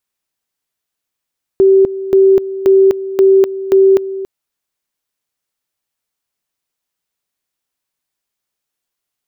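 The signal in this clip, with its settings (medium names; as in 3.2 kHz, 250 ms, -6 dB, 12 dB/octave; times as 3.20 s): two-level tone 386 Hz -4.5 dBFS, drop 14.5 dB, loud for 0.25 s, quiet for 0.28 s, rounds 5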